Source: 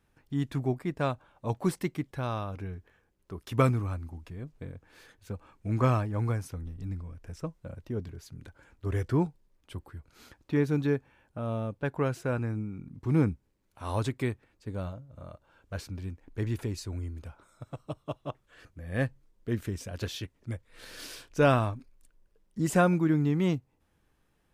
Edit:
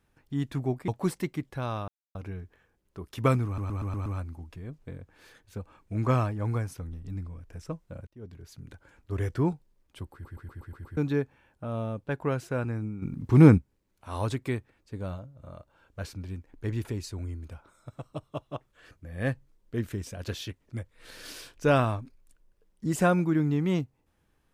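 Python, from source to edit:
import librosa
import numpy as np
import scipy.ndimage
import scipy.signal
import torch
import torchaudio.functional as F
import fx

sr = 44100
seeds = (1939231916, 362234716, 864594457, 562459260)

y = fx.edit(x, sr, fx.cut(start_s=0.88, length_s=0.61),
    fx.insert_silence(at_s=2.49, length_s=0.27),
    fx.stutter(start_s=3.8, slice_s=0.12, count=6),
    fx.fade_in_span(start_s=7.81, length_s=0.51),
    fx.stutter_over(start_s=9.87, slice_s=0.12, count=7),
    fx.clip_gain(start_s=12.76, length_s=0.56, db=9.5), tone=tone)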